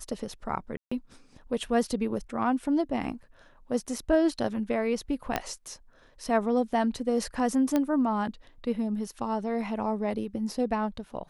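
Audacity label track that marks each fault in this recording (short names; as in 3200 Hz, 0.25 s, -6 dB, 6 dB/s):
0.770000	0.920000	gap 0.145 s
5.360000	5.360000	pop -11 dBFS
7.760000	7.760000	pop -13 dBFS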